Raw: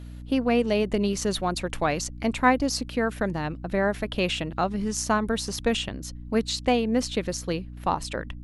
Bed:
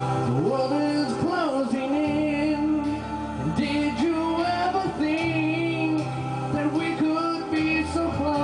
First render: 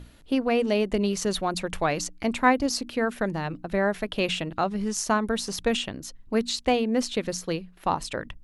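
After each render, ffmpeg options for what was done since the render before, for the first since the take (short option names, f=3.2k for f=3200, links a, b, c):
-af "bandreject=f=60:t=h:w=6,bandreject=f=120:t=h:w=6,bandreject=f=180:t=h:w=6,bandreject=f=240:t=h:w=6,bandreject=f=300:t=h:w=6"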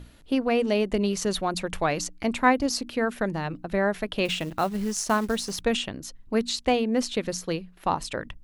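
-filter_complex "[0:a]asettb=1/sr,asplit=3[a][b][c];[a]atrim=end=4.254[d];[b]atrim=start=4.25:end=5.61,asetpts=PTS-STARTPTS,afade=t=in:d=0.004:c=qsin,afade=t=out:st=1.356:d=0.004:c=qsin,acrusher=bits=5:mode=log:mix=0:aa=0.000001[e];[c]atrim=start=5.606[f];[d][e]acrossfade=d=0.004:c1=hsin:c2=qsin[g];[g][f]acrossfade=d=0.004:c1=qsin:c2=hsin"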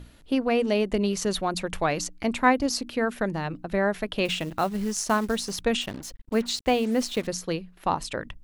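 -filter_complex "[0:a]asettb=1/sr,asplit=3[a][b][c];[a]atrim=end=5.814[d];[b]atrim=start=5.81:end=7.27,asetpts=PTS-STARTPTS,afade=t=in:d=0.004:c=qsin,afade=t=out:st=1.456:d=0.004:c=qsin,acrusher=bits=6:mix=0:aa=0.5[e];[c]atrim=start=7.266[f];[d][e]acrossfade=d=0.004:c1=hsin:c2=qsin[g];[g][f]acrossfade=d=0.004:c1=qsin:c2=hsin"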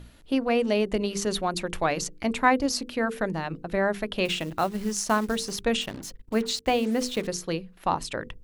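-af "bandreject=f=50:t=h:w=6,bandreject=f=100:t=h:w=6,bandreject=f=150:t=h:w=6,bandreject=f=200:t=h:w=6,bandreject=f=250:t=h:w=6,bandreject=f=300:t=h:w=6,bandreject=f=350:t=h:w=6,bandreject=f=400:t=h:w=6,bandreject=f=450:t=h:w=6,bandreject=f=500:t=h:w=6"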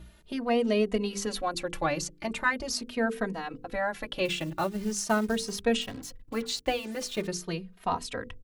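-filter_complex "[0:a]asplit=2[a][b];[b]adelay=2.9,afreqshift=0.42[c];[a][c]amix=inputs=2:normalize=1"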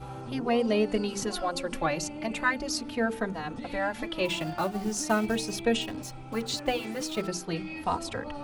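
-filter_complex "[1:a]volume=-15.5dB[a];[0:a][a]amix=inputs=2:normalize=0"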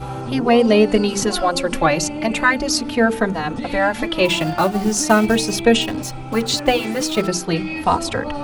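-af "volume=12dB,alimiter=limit=-2dB:level=0:latency=1"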